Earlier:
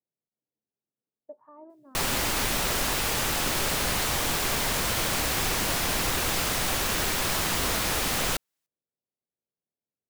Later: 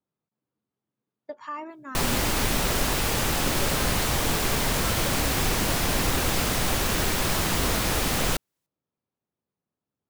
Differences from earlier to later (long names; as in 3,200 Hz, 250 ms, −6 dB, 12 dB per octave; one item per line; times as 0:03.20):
speech: remove transistor ladder low-pass 800 Hz, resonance 30%
master: add low-shelf EQ 490 Hz +6.5 dB